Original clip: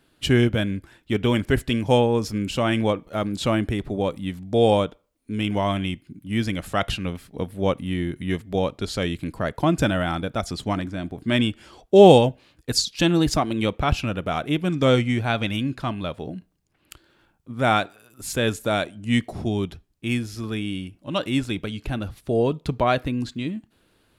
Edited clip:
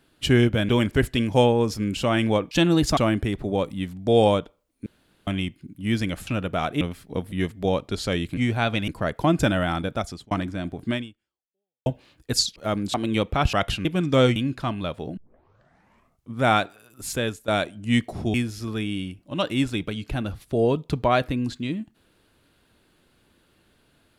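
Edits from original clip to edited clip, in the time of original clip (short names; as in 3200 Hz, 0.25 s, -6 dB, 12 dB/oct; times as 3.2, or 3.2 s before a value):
0.69–1.23 cut
3.05–3.43 swap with 12.95–13.41
5.32–5.73 room tone
6.73–7.05 swap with 14–14.54
7.56–8.22 cut
10.34–10.7 fade out
11.28–12.25 fade out exponential
15.05–15.56 move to 9.27
16.37 tape start 1.18 s
18.27–18.68 fade out, to -16.5 dB
19.54–20.1 cut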